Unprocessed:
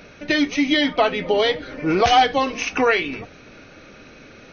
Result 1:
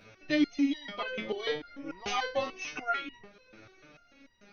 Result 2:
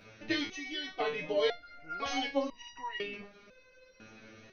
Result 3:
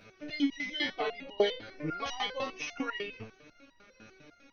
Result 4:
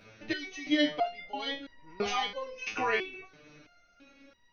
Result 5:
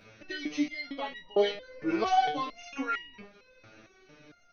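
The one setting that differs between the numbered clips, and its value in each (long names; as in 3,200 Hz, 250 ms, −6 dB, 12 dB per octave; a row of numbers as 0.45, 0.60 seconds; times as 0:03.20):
step-sequenced resonator, speed: 6.8, 2, 10, 3, 4.4 Hertz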